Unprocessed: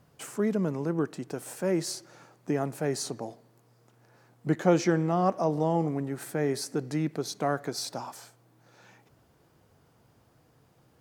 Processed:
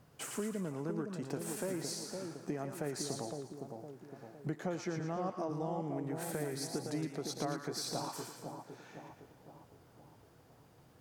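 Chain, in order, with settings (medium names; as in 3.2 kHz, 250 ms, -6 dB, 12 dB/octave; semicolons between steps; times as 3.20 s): compression 5:1, threshold -35 dBFS, peak gain reduction 16.5 dB; two-band feedback delay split 980 Hz, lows 511 ms, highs 114 ms, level -5 dB; trim -1 dB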